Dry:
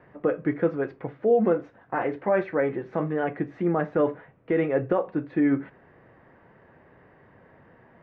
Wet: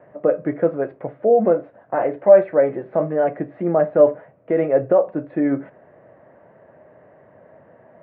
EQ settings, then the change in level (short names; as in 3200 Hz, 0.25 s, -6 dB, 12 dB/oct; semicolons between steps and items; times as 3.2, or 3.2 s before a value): HPF 97 Hz; air absorption 390 m; bell 610 Hz +14.5 dB 0.43 oct; +2.0 dB